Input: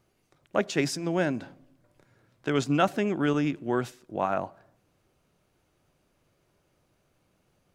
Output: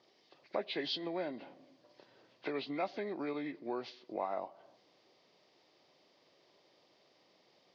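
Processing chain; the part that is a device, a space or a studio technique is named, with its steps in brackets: hearing aid with frequency lowering (knee-point frequency compression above 1.3 kHz 1.5:1; compression 2.5:1, threshold -43 dBFS, peak gain reduction 16.5 dB; cabinet simulation 370–5700 Hz, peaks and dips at 1.4 kHz -10 dB, 3.3 kHz +3 dB, 4.7 kHz +8 dB); trim +5 dB

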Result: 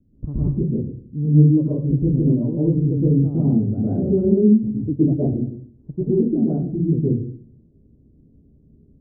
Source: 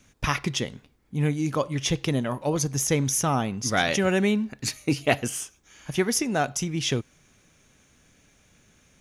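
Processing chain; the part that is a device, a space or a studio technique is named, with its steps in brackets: next room (low-pass 360 Hz 24 dB/octave; reverberation RT60 0.55 s, pre-delay 110 ms, DRR -8.5 dB); trim +1 dB

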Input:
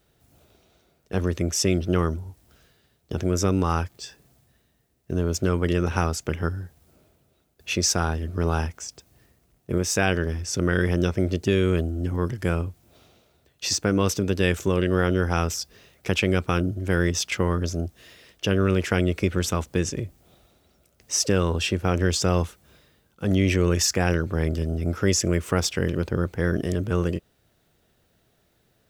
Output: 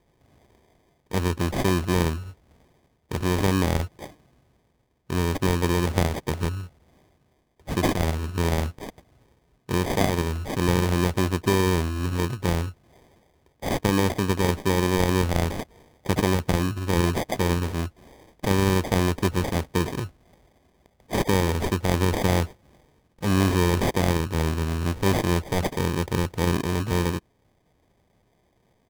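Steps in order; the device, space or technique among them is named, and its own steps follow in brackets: crushed at another speed (playback speed 0.8×; sample-and-hold 40×; playback speed 1.25×)

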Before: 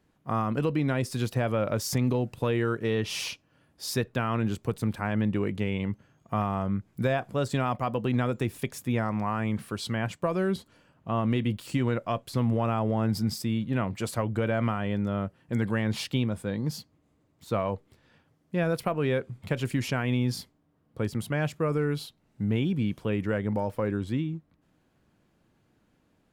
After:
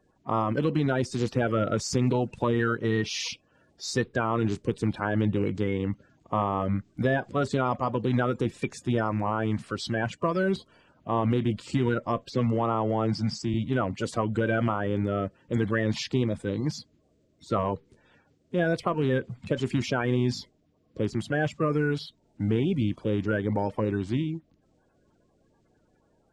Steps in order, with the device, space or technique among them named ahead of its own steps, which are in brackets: 12.30–13.54 s: Chebyshev band-pass 120–7500 Hz, order 3; clip after many re-uploads (low-pass 7.8 kHz 24 dB/octave; coarse spectral quantiser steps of 30 dB); trim +2 dB

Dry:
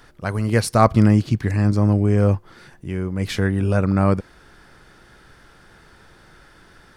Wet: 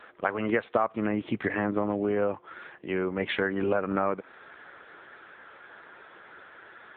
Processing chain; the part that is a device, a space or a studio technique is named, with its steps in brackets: voicemail (band-pass 420–3100 Hz; compression 10:1, threshold -28 dBFS, peak gain reduction 18.5 dB; trim +6.5 dB; AMR-NB 6.7 kbps 8 kHz)

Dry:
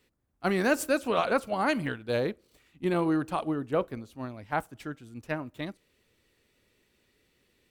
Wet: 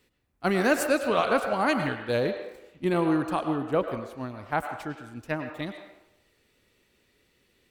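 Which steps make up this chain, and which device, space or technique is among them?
filtered reverb send (on a send: high-pass 450 Hz 12 dB/octave + low-pass 5.7 kHz 12 dB/octave + reverberation RT60 0.90 s, pre-delay 94 ms, DRR 6.5 dB); on the sum: trim +2 dB

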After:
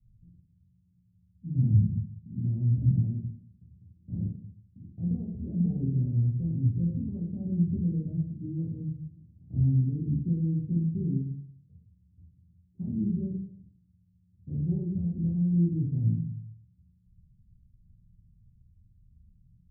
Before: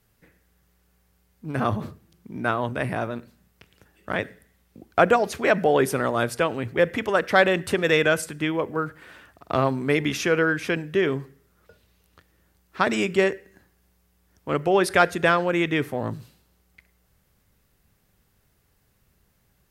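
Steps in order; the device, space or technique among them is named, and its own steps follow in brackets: club heard from the street (peak limiter -11 dBFS, peak gain reduction 8 dB; low-pass 160 Hz 24 dB/octave; reverberation RT60 0.55 s, pre-delay 9 ms, DRR -5 dB); trim +3 dB

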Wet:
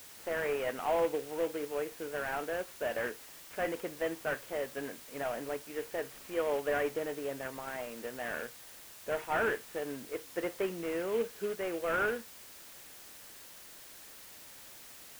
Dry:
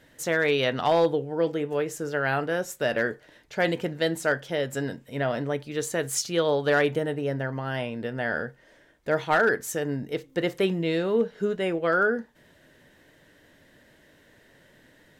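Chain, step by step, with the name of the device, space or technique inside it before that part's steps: army field radio (band-pass 320–3000 Hz; CVSD coder 16 kbps; white noise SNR 15 dB); trim -6.5 dB

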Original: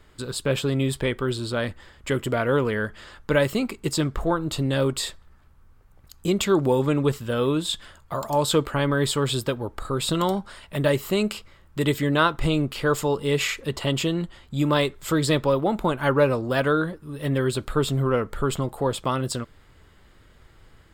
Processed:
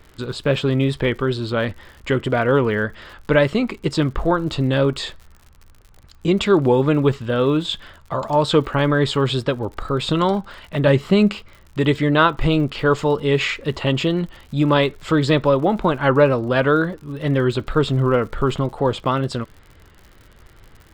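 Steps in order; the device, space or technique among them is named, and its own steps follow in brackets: lo-fi chain (low-pass 3.9 kHz 12 dB/octave; wow and flutter; crackle 78 per s -40 dBFS); 10.87–11.35 s: peaking EQ 170 Hz +9 dB 0.67 oct; trim +5 dB

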